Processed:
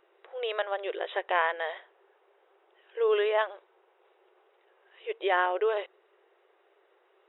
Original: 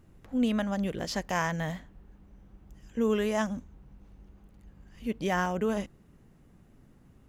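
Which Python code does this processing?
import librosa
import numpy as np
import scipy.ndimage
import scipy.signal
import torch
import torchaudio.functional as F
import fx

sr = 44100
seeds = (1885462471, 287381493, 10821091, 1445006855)

y = fx.brickwall_bandpass(x, sr, low_hz=350.0, high_hz=3900.0)
y = y * librosa.db_to_amplitude(4.0)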